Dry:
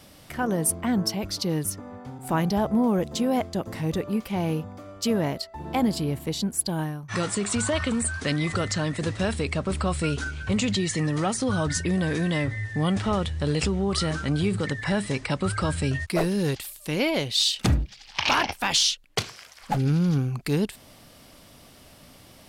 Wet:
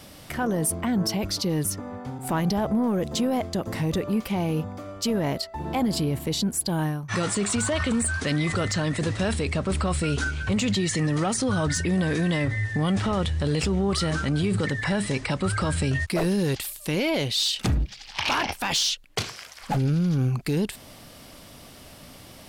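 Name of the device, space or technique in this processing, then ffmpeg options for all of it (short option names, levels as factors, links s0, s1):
soft clipper into limiter: -af "asoftclip=type=tanh:threshold=0.178,alimiter=limit=0.0794:level=0:latency=1:release=26,volume=1.68"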